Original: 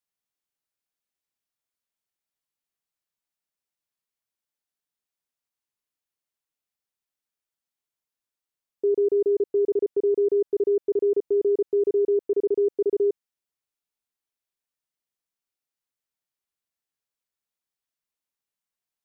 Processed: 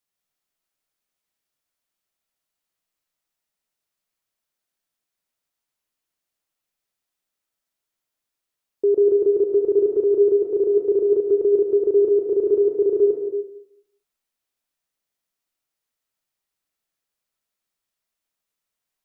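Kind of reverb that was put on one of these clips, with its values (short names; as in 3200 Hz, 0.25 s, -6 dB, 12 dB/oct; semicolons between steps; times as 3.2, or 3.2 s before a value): digital reverb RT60 0.73 s, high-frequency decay 0.6×, pre-delay 95 ms, DRR 1 dB; gain +4 dB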